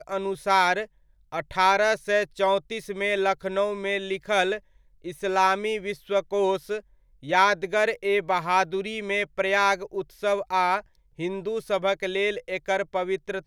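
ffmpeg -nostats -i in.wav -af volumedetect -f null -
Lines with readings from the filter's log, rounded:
mean_volume: -25.6 dB
max_volume: -7.1 dB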